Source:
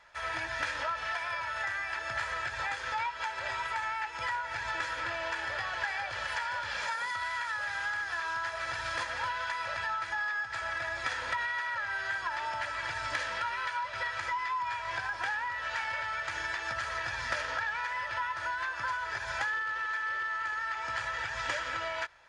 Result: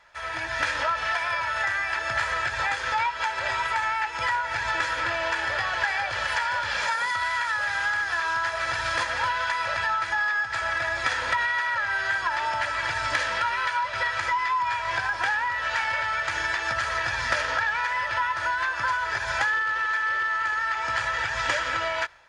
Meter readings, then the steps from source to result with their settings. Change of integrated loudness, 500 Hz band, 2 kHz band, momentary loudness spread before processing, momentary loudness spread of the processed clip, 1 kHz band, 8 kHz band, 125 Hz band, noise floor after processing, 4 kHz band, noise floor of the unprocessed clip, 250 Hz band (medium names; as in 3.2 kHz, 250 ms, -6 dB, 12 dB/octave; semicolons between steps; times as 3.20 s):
+8.0 dB, +8.0 dB, +8.0 dB, 2 LU, 2 LU, +8.0 dB, +8.0 dB, +8.0 dB, -32 dBFS, +8.0 dB, -40 dBFS, +7.5 dB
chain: level rider gain up to 6 dB; trim +2 dB